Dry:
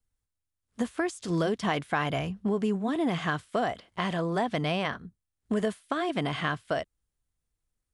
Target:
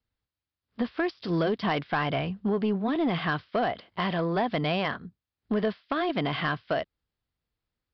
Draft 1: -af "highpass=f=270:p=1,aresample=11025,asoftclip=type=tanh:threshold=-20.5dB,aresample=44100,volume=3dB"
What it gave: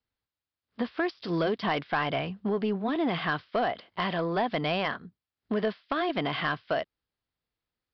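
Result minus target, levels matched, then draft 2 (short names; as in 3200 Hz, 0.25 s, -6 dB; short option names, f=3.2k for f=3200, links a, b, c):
125 Hz band -3.0 dB
-af "highpass=f=100:p=1,aresample=11025,asoftclip=type=tanh:threshold=-20.5dB,aresample=44100,volume=3dB"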